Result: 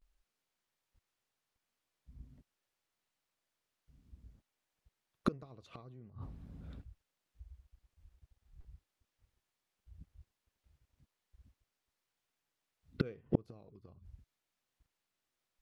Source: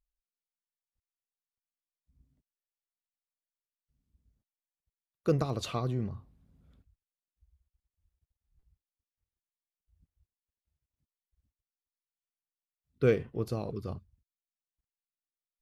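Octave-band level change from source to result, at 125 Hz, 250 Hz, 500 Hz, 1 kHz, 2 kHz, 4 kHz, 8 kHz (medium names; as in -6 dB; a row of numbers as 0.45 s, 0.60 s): -9.5 dB, -5.0 dB, -13.5 dB, -8.0 dB, -10.0 dB, -11.5 dB, under -15 dB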